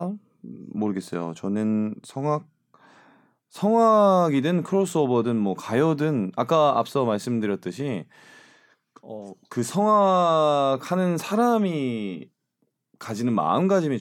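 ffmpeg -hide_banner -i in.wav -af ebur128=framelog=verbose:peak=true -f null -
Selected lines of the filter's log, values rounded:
Integrated loudness:
  I:         -22.8 LUFS
  Threshold: -34.0 LUFS
Loudness range:
  LRA:         6.7 LU
  Threshold: -43.7 LUFS
  LRA low:   -28.2 LUFS
  LRA high:  -21.5 LUFS
True peak:
  Peak:       -6.9 dBFS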